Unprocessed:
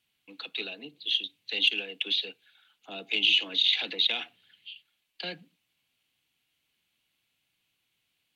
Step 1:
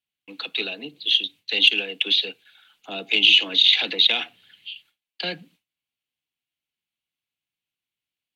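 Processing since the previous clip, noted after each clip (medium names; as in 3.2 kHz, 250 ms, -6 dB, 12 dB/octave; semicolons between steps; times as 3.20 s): gate with hold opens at -56 dBFS; trim +8 dB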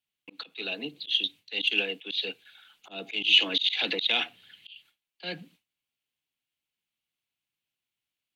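slow attack 190 ms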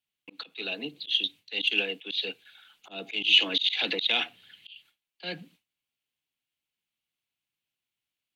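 no audible change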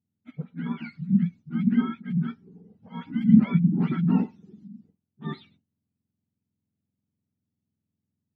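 spectrum inverted on a logarithmic axis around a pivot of 800 Hz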